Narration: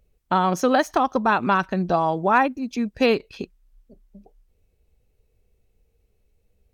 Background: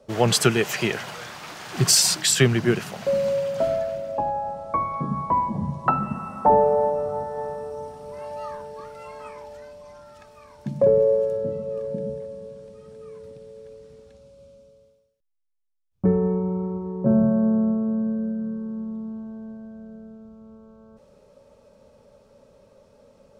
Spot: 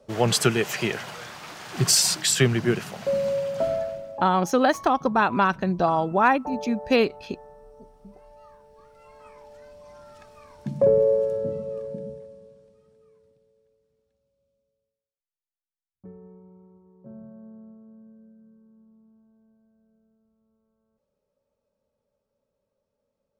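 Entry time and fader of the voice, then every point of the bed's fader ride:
3.90 s, -1.0 dB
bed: 3.83 s -2 dB
4.56 s -17 dB
8.59 s -17 dB
10.05 s -1 dB
11.57 s -1 dB
13.78 s -25 dB

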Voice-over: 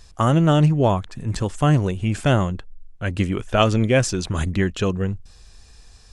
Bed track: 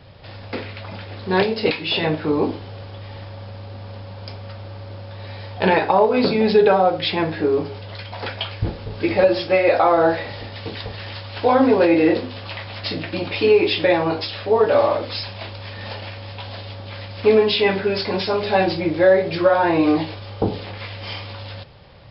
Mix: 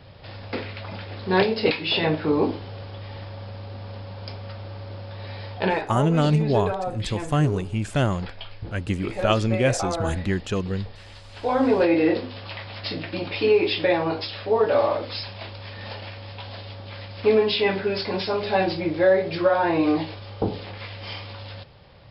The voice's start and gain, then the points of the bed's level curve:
5.70 s, -4.0 dB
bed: 5.51 s -1.5 dB
5.94 s -12.5 dB
11.24 s -12.5 dB
11.69 s -4 dB

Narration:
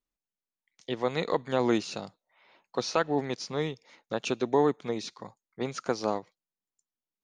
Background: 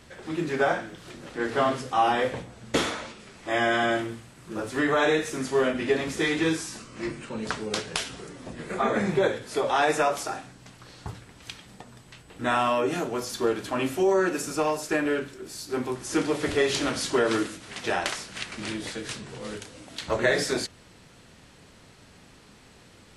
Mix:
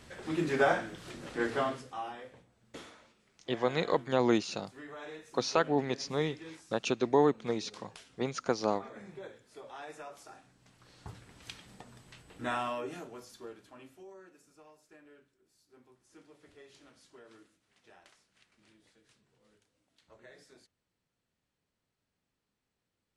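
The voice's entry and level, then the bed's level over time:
2.60 s, -1.0 dB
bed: 1.41 s -2.5 dB
2.24 s -23 dB
10.05 s -23 dB
11.34 s -6 dB
12.27 s -6 dB
14.33 s -32.5 dB

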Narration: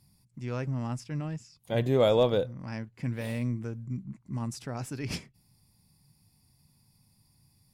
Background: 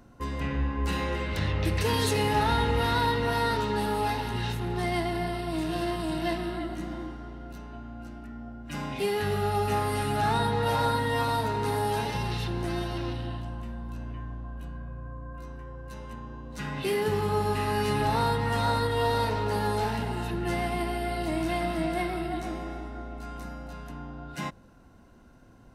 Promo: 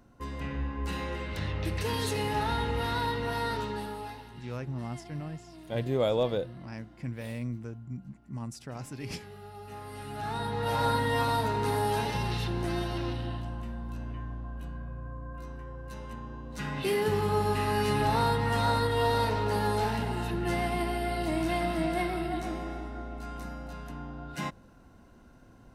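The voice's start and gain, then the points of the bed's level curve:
4.00 s, -4.0 dB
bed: 3.63 s -5 dB
4.43 s -19 dB
9.56 s -19 dB
10.91 s -0.5 dB

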